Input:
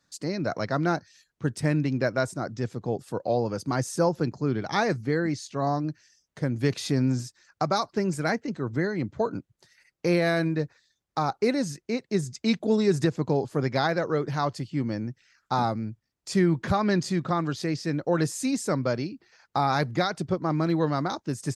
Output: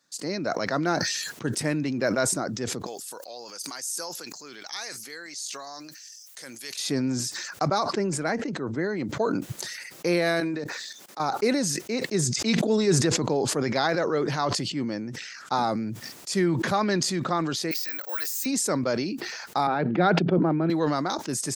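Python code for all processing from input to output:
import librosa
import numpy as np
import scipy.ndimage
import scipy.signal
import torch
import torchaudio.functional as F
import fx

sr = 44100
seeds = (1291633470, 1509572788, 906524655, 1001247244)

y = fx.chain(x, sr, fx.differentiator(),
    fx.env_flatten(amount_pct=50), at=(2.86, 6.79))
y = fx.chain(y, sr, fx.lowpass(hz=10000.0, slope=24),
    fx.high_shelf(hz=2700.0, db=-8.0), at=(7.68, 8.97))
y = fx.chain(y, sr, fx.highpass(hz=210.0, slope=12),
    fx.level_steps(step_db=18), at=(10.4, 11.2))
y = fx.chain(y, sr, fx.lowpass(hz=9000.0, slope=12),
    fx.sustainer(db_per_s=140.0), at=(12.2, 15.56))
y = fx.chain(y, sr, fx.highpass(hz=1400.0, slope=12),
    fx.high_shelf(hz=7600.0, db=-7.5),
    fx.resample_bad(factor=2, down='none', up='zero_stuff'), at=(17.71, 18.46))
y = fx.chain(y, sr, fx.cabinet(low_hz=150.0, low_slope=24, high_hz=2600.0, hz=(170.0, 360.0, 1100.0, 2000.0), db=(9, 4, -8, -8)),
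    fx.sustainer(db_per_s=22.0), at=(19.67, 20.7))
y = scipy.signal.sosfilt(scipy.signal.butter(2, 210.0, 'highpass', fs=sr, output='sos'), y)
y = fx.high_shelf(y, sr, hz=4300.0, db=6.0)
y = fx.sustainer(y, sr, db_per_s=29.0)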